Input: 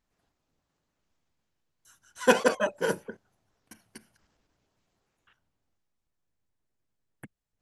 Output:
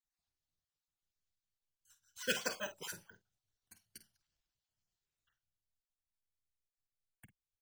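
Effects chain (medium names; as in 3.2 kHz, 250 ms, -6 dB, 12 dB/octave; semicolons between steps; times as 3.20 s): random holes in the spectrogram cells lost 24%; careless resampling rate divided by 2×, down filtered, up hold; ten-band graphic EQ 250 Hz -12 dB, 500 Hz -9 dB, 1 kHz -8 dB, 2 kHz -4 dB, 4 kHz +4 dB, 8 kHz +4 dB; gate -58 dBFS, range -7 dB; doubling 49 ms -11.5 dB; trim -5.5 dB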